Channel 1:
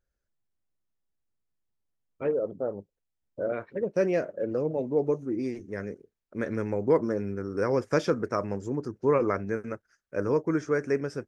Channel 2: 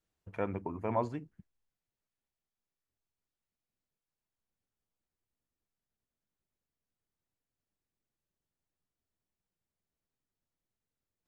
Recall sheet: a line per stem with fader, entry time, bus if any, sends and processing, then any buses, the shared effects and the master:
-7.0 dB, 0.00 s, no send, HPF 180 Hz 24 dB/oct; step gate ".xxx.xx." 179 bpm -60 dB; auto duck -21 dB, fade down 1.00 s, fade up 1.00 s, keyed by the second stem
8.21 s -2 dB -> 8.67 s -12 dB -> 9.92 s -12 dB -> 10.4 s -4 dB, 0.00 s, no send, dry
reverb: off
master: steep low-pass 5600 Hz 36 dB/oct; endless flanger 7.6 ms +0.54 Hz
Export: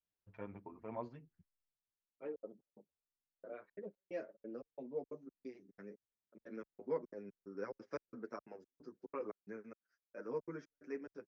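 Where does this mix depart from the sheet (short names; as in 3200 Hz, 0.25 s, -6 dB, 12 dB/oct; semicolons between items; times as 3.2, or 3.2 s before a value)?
stem 1 -7.0 dB -> -13.5 dB; stem 2 -2.0 dB -> -10.5 dB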